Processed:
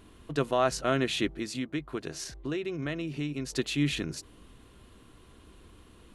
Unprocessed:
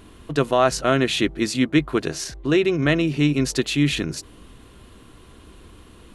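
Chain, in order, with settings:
0:01.33–0:03.53: downward compressor 3 to 1, threshold −24 dBFS, peak gain reduction 9 dB
level −8 dB

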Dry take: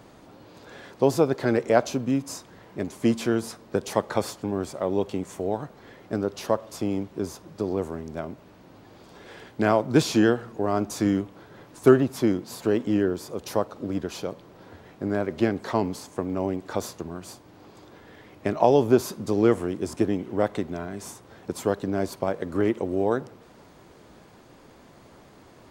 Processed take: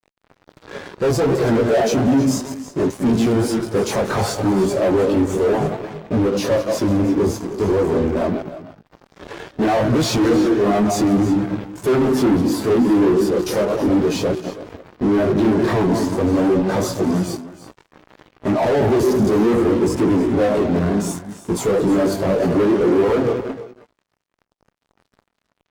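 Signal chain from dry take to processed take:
feedback delay that plays each chunk backwards 105 ms, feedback 48%, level −10.5 dB
multi-voice chorus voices 2, 0.65 Hz, delay 20 ms, depth 4.3 ms
fuzz pedal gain 46 dB, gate −46 dBFS
multi-tap delay 308/327 ms −13.5/−12 dB
every bin expanded away from the loudest bin 1.5 to 1

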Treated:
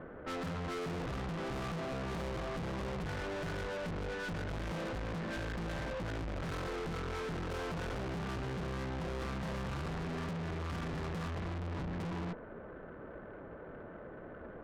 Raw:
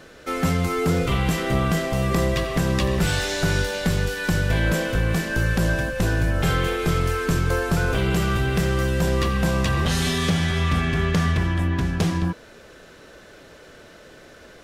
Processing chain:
low-pass filter 1,400 Hz 24 dB per octave
parametric band 200 Hz +3 dB 0.99 octaves
tube saturation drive 39 dB, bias 0.55
level +1.5 dB

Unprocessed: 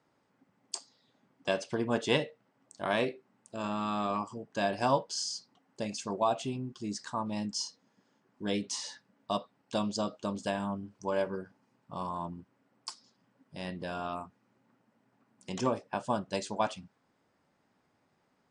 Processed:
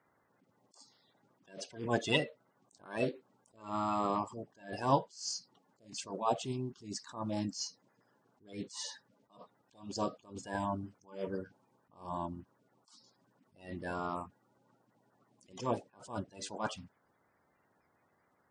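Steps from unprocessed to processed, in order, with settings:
spectral magnitudes quantised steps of 30 dB
level that may rise only so fast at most 150 dB per second

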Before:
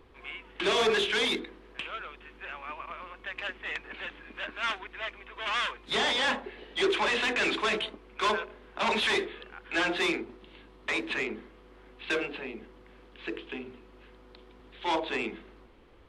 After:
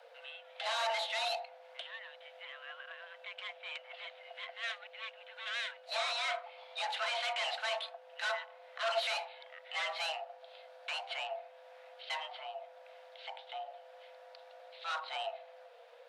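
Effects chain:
low shelf with overshoot 280 Hz +6.5 dB, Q 3
frequency shifter +460 Hz
one half of a high-frequency compander encoder only
level −8.5 dB

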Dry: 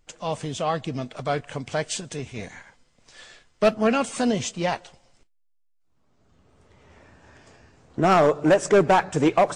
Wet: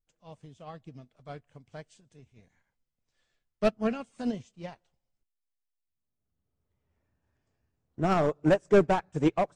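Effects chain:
low-shelf EQ 220 Hz +11 dB
expander for the loud parts 2.5 to 1, over −28 dBFS
level −5 dB

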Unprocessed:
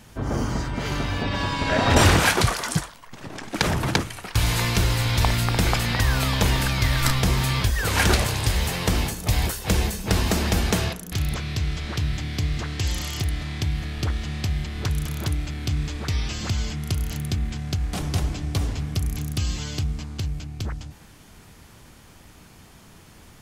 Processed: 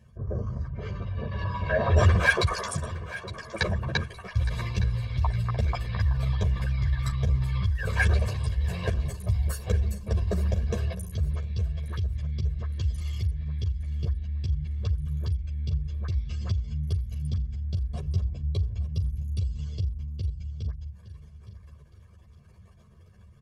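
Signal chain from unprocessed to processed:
spectral envelope exaggerated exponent 2
high-pass filter 51 Hz
comb filter 1.8 ms, depth 87%
on a send: repeating echo 864 ms, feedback 36%, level −14.5 dB
on the sum: string-ensemble chorus
level −3.5 dB

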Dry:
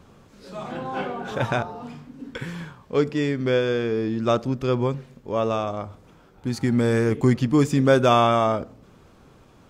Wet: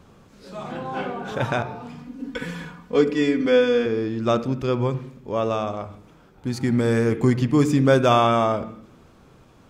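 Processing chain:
0:01.98–0:03.86: comb filter 4.1 ms, depth 88%
on a send: convolution reverb RT60 0.80 s, pre-delay 47 ms, DRR 13 dB

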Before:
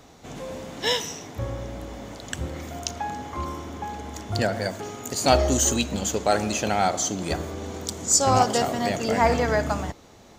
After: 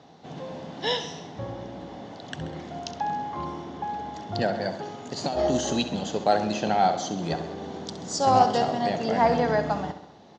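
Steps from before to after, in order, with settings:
0:05.17–0:05.83: compressor whose output falls as the input rises −21 dBFS, ratio −0.5
loudspeaker in its box 140–4,900 Hz, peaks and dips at 160 Hz +8 dB, 780 Hz +5 dB, 1,300 Hz −4 dB, 2,300 Hz −7 dB
repeating echo 66 ms, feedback 59%, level −12 dB
level −2 dB

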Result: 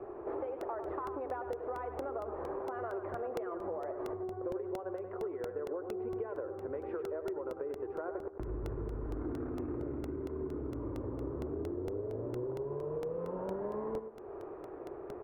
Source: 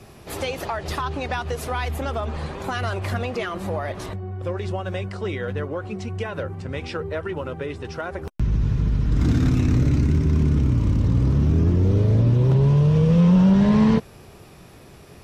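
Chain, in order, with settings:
low-pass filter 1,300 Hz 24 dB per octave
low shelf with overshoot 260 Hz −12 dB, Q 3
downward compressor 10 to 1, threshold −36 dBFS, peak gain reduction 18.5 dB
repeating echo 100 ms, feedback 30%, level −8.5 dB
regular buffer underruns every 0.23 s, samples 64, repeat, from 0:00.61

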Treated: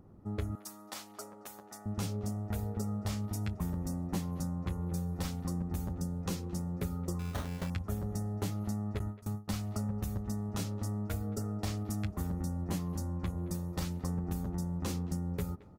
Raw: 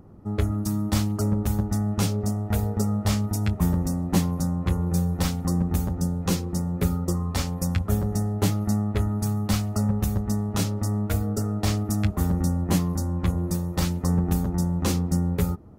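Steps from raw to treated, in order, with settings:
0:08.99–0:09.48: noise gate with hold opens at −14 dBFS
far-end echo of a speakerphone 220 ms, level −20 dB
downward compressor 3 to 1, threshold −24 dBFS, peak gain reduction 6.5 dB
0:00.55–0:01.86: high-pass filter 610 Hz 12 dB per octave
0:07.19–0:07.70: sample-rate reduction 2,500 Hz, jitter 0%
level −8 dB

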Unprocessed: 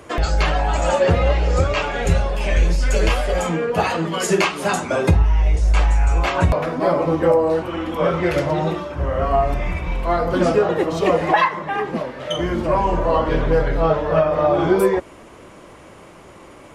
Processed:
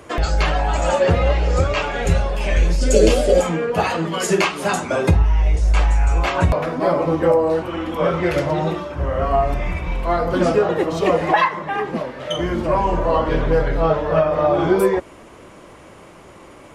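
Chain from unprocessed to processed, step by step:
0:02.81–0:03.41: octave-band graphic EQ 125/250/500/1,000/2,000/4,000/8,000 Hz −4/+11/+10/−9/−5/+3/+8 dB

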